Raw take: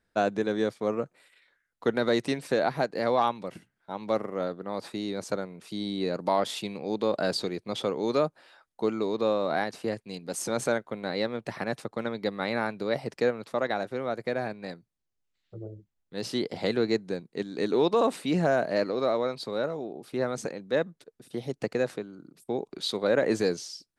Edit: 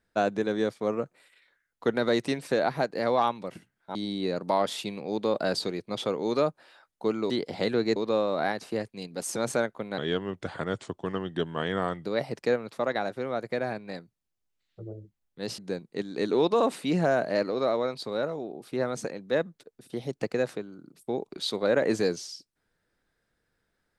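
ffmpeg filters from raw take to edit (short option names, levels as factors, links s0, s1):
-filter_complex "[0:a]asplit=7[s0][s1][s2][s3][s4][s5][s6];[s0]atrim=end=3.952[s7];[s1]atrim=start=5.728:end=9.082[s8];[s2]atrim=start=16.328:end=16.992[s9];[s3]atrim=start=9.078:end=11.104[s10];[s4]atrim=start=11.1:end=12.8,asetpts=PTS-STARTPTS,asetrate=36162,aresample=44100[s11];[s5]atrim=start=12.796:end=16.332[s12];[s6]atrim=start=16.988[s13];[s7][s8]acrossfade=d=0.004:c1=hsin:c2=hsin[s14];[s14][s9]acrossfade=d=0.004:c1=hsin:c2=hsin[s15];[s15][s10]acrossfade=d=0.004:c1=hsin:c2=hsin[s16];[s16][s11]acrossfade=d=0.004:c1=hsin:c2=hsin[s17];[s17][s12]acrossfade=d=0.004:c1=hsin:c2=hsin[s18];[s18][s13]acrossfade=d=0.004:c1=hsin:c2=hsin"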